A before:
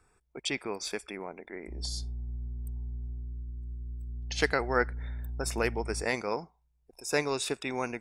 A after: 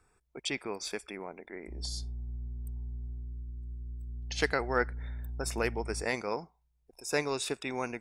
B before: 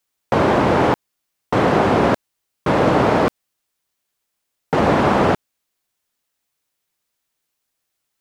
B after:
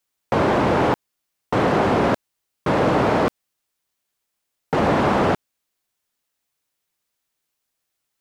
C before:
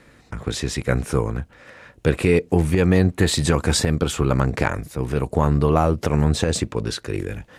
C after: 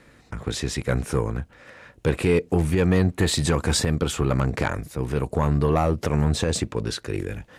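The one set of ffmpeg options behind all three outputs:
-af "asoftclip=type=tanh:threshold=-10.5dB,aeval=exprs='0.299*(cos(1*acos(clip(val(0)/0.299,-1,1)))-cos(1*PI/2))+0.0188*(cos(3*acos(clip(val(0)/0.299,-1,1)))-cos(3*PI/2))':c=same"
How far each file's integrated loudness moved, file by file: -2.0, -2.5, -2.5 LU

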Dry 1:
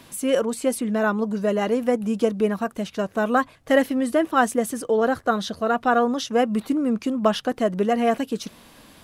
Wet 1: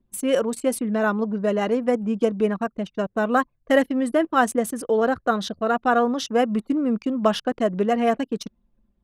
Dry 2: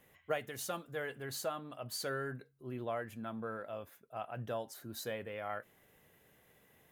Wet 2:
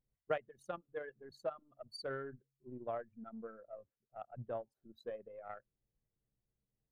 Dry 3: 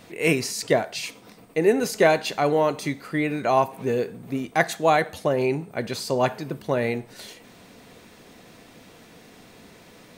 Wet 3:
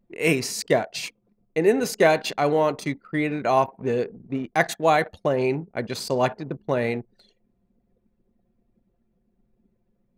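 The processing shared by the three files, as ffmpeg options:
-af "anlmdn=6.31"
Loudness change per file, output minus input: 0.0, -4.5, 0.0 LU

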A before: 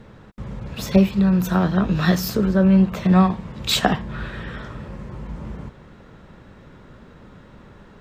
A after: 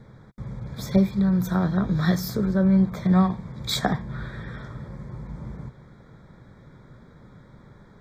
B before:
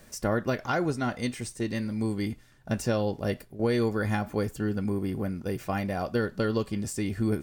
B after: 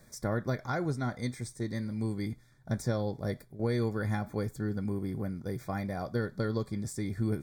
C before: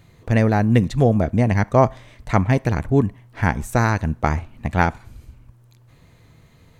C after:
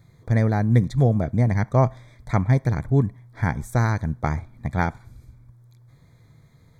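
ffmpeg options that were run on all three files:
-af "asuperstop=centerf=2800:order=20:qfactor=3.4,equalizer=f=130:w=2.1:g=7.5,volume=-6dB"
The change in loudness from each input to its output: -4.0, -4.5, -3.0 LU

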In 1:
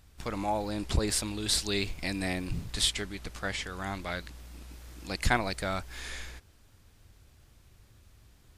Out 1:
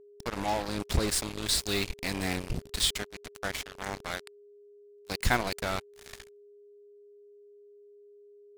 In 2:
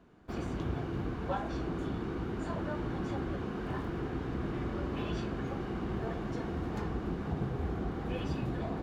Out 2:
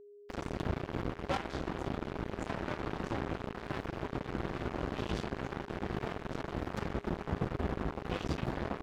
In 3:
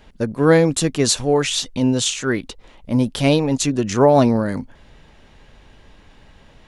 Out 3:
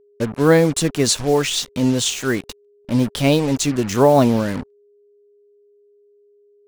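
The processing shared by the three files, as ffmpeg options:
-af "acrusher=bits=4:mix=0:aa=0.5,aeval=exprs='val(0)+0.00251*sin(2*PI*410*n/s)':c=same"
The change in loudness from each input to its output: +0.5, -1.5, 0.0 LU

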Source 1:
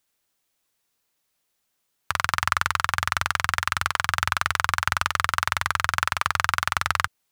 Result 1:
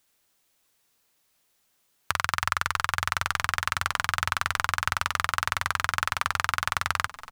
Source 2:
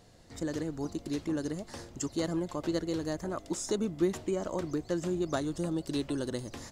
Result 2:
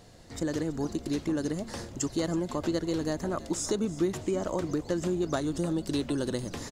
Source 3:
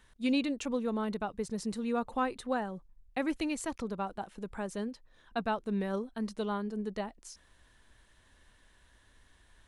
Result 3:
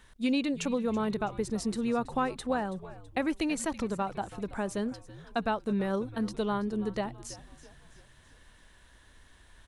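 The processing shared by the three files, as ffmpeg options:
-filter_complex "[0:a]acompressor=threshold=-32dB:ratio=2,asplit=2[a][b];[b]asplit=4[c][d][e][f];[c]adelay=328,afreqshift=-85,volume=-17dB[g];[d]adelay=656,afreqshift=-170,volume=-23dB[h];[e]adelay=984,afreqshift=-255,volume=-29dB[i];[f]adelay=1312,afreqshift=-340,volume=-35.1dB[j];[g][h][i][j]amix=inputs=4:normalize=0[k];[a][k]amix=inputs=2:normalize=0,volume=5dB"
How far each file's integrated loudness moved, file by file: -3.0, +3.0, +3.0 LU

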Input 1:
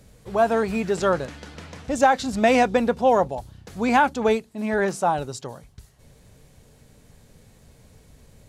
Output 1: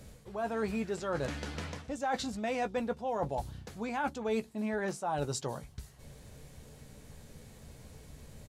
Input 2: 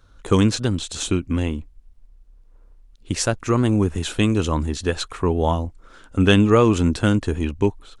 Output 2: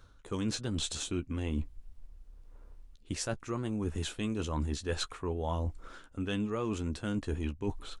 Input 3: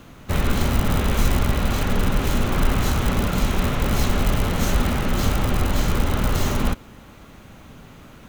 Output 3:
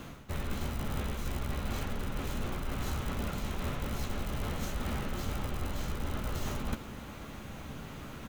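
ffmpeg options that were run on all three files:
-filter_complex "[0:a]areverse,acompressor=threshold=-31dB:ratio=10,areverse,asplit=2[a][b];[b]adelay=14,volume=-10dB[c];[a][c]amix=inputs=2:normalize=0"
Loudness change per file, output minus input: -13.5, -14.5, -15.0 LU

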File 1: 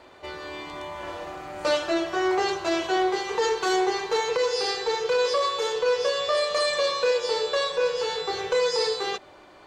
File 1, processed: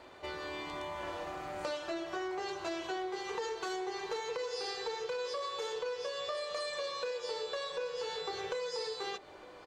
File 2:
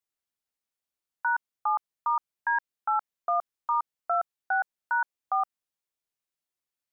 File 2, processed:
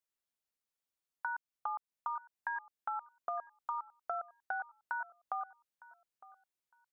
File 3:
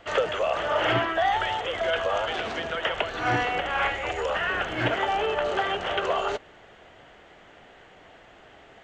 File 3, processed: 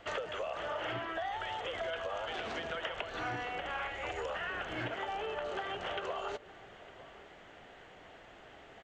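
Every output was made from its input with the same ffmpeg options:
-filter_complex "[0:a]acompressor=threshold=-32dB:ratio=6,asplit=2[a][b];[b]adelay=908,lowpass=f=2k:p=1,volume=-19dB,asplit=2[c][d];[d]adelay=908,lowpass=f=2k:p=1,volume=0.24[e];[c][e]amix=inputs=2:normalize=0[f];[a][f]amix=inputs=2:normalize=0,volume=-3.5dB"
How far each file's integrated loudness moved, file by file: -13.5, -11.5, -12.0 LU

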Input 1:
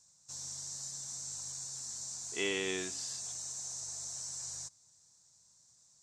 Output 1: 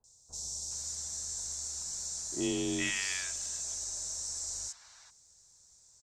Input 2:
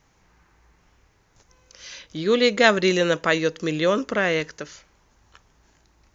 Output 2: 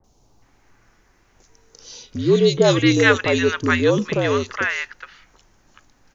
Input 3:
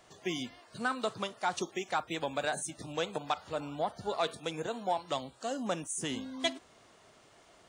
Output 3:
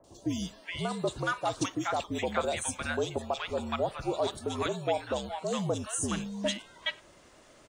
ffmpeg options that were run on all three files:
-filter_complex "[0:a]acrossover=split=1000|3500[a][b][c];[c]adelay=40[d];[b]adelay=420[e];[a][e][d]amix=inputs=3:normalize=0,afreqshift=-60,volume=4.5dB"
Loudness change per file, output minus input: +3.5, +3.0, +3.0 LU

